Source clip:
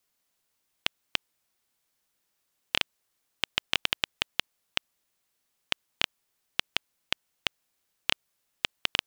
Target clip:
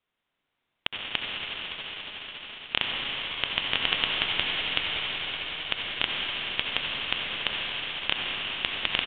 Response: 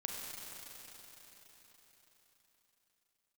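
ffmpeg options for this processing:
-filter_complex "[0:a]aresample=8000,aresample=44100[s0];[1:a]atrim=start_sample=2205,asetrate=22491,aresample=44100[s1];[s0][s1]afir=irnorm=-1:irlink=0"

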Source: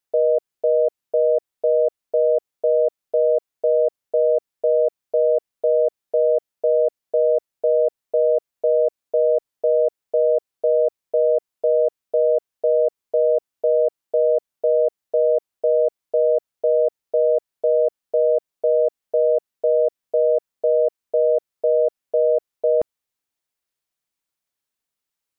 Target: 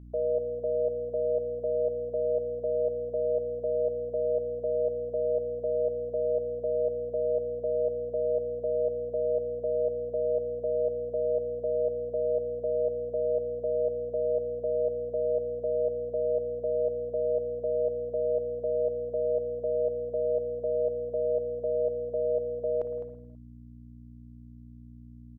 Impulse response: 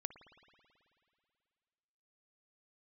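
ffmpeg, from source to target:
-filter_complex "[0:a]aeval=exprs='val(0)+0.02*(sin(2*PI*60*n/s)+sin(2*PI*2*60*n/s)/2+sin(2*PI*3*60*n/s)/3+sin(2*PI*4*60*n/s)/4+sin(2*PI*5*60*n/s)/5)':c=same,aecho=1:1:208:0.282[s0];[1:a]atrim=start_sample=2205,afade=t=out:st=0.39:d=0.01,atrim=end_sample=17640[s1];[s0][s1]afir=irnorm=-1:irlink=0,volume=0.398"

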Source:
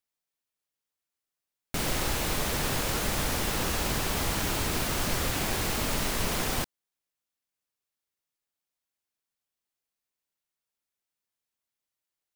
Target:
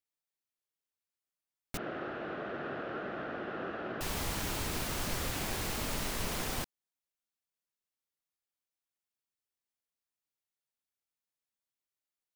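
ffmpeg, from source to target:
-filter_complex "[0:a]asettb=1/sr,asplit=3[s0][s1][s2];[s0]atrim=end=1.774[s3];[s1]atrim=start=1.77:end=4.01,asetpts=PTS-STARTPTS,afade=t=in:d=0.004:c=qsin,afade=t=out:st=2.236:d=0.004:c=qsin,highpass=220,equalizer=f=360:t=q:w=4:g=5,equalizer=f=660:t=q:w=4:g=5,equalizer=f=940:t=q:w=4:g=-10,equalizer=f=1400:t=q:w=4:g=6,equalizer=f=2200:t=q:w=4:g=-10,lowpass=f=2300:w=0.5412,lowpass=f=2300:w=1.3066[s4];[s2]atrim=start=4.006[s5];[s3][s4]acrossfade=d=0.004:c1=hsin:c2=qsin[s6];[s6][s5]acrossfade=d=0.004:c1=qsin:c2=hsin,volume=0.473"

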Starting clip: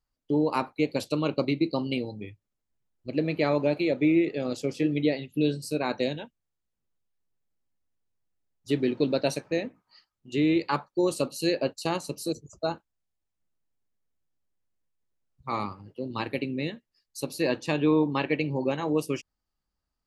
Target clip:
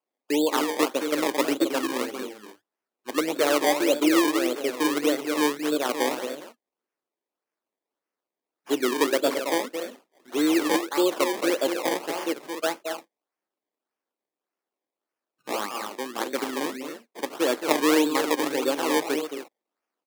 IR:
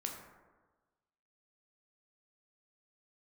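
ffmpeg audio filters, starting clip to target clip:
-filter_complex "[0:a]asplit=2[s0][s1];[s1]aecho=0:1:221.6|268.2:0.447|0.316[s2];[s0][s2]amix=inputs=2:normalize=0,acrusher=samples=22:mix=1:aa=0.000001:lfo=1:lforange=22:lforate=1.7,highpass=f=290:w=0.5412,highpass=f=290:w=1.3066,volume=1.41"

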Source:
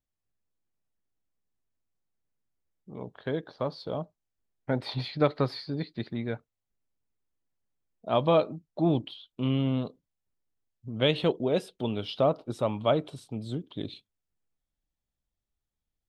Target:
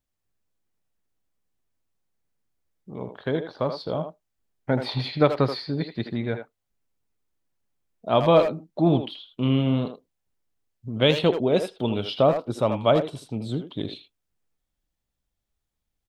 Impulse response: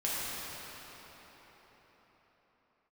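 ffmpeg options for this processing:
-filter_complex "[0:a]asplit=2[s0][s1];[s1]adelay=80,highpass=300,lowpass=3400,asoftclip=type=hard:threshold=0.112,volume=0.447[s2];[s0][s2]amix=inputs=2:normalize=0,volume=1.78"

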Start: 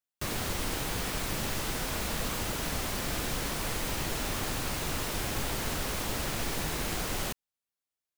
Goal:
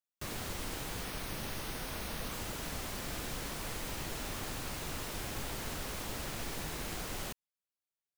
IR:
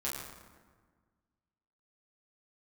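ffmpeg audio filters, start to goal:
-filter_complex "[0:a]asettb=1/sr,asplit=3[s0][s1][s2];[s0]atrim=end=1.044[s3];[s1]atrim=start=1.04:end=2.32,asetpts=PTS-STARTPTS,afade=t=in:d=0.004:c=qsin,afade=t=out:st=1.276:d=0.004:c=qsin,bandreject=f=7400:w=5.1[s4];[s2]atrim=start=2.316[s5];[s3][s4]acrossfade=d=0.004:c1=hsin:c2=qsin[s6];[s6][s5]acrossfade=d=0.004:c1=qsin:c2=hsin,volume=0.447"

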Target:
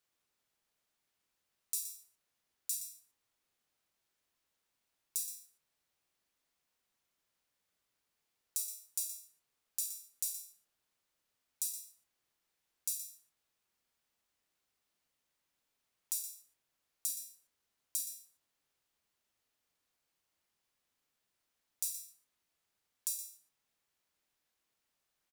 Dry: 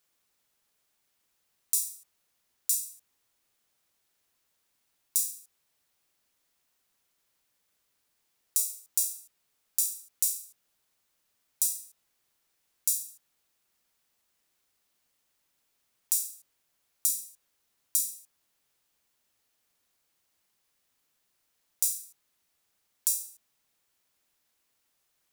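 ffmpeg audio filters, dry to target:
-filter_complex "[0:a]highshelf=f=6700:g=-5.5,asplit=2[s0][s1];[s1]adelay=27,volume=0.266[s2];[s0][s2]amix=inputs=2:normalize=0,aecho=1:1:120:0.251,volume=0.501"

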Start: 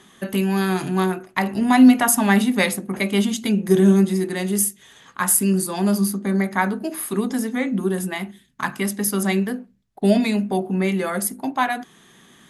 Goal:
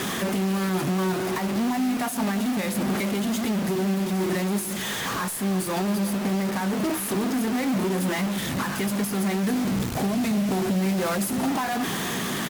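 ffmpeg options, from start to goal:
-filter_complex "[0:a]aeval=exprs='val(0)+0.5*0.126*sgn(val(0))':c=same,alimiter=limit=0.211:level=0:latency=1:release=235,asettb=1/sr,asplit=3[s0][s1][s2];[s0]atrim=end=9.434[s3];[s1]atrim=start=9.43:end=11.48,asetpts=PTS-STARTPTS,afade=t=in:d=0.004:c=qsin,afade=t=out:st=2.046:d=0.004:c=qsin,bass=f=250:g=7,treble=f=4000:g=6[s4];[s2]atrim=start=11.476[s5];[s3][s4]acrossfade=d=0.004:c1=hsin:c2=qsin[s6];[s6][s5]acrossfade=d=0.004:c1=qsin:c2=hsin,asoftclip=type=tanh:threshold=0.0891,highshelf=f=2200:g=-6.5,aeval=exprs='0.0891*(cos(1*acos(clip(val(0)/0.0891,-1,1)))-cos(1*PI/2))+0.00398*(cos(3*acos(clip(val(0)/0.0891,-1,1)))-cos(3*PI/2))+0.00708*(cos(8*acos(clip(val(0)/0.0891,-1,1)))-cos(8*PI/2))':c=same,highpass=89,asplit=2[s7][s8];[s8]adelay=349,lowpass=f=1300:p=1,volume=0.237,asplit=2[s9][s10];[s10]adelay=349,lowpass=f=1300:p=1,volume=0.27,asplit=2[s11][s12];[s12]adelay=349,lowpass=f=1300:p=1,volume=0.27[s13];[s7][s9][s11][s13]amix=inputs=4:normalize=0,acrusher=bits=5:mix=0:aa=0.000001" -ar 44100 -c:a libmp3lame -b:a 80k

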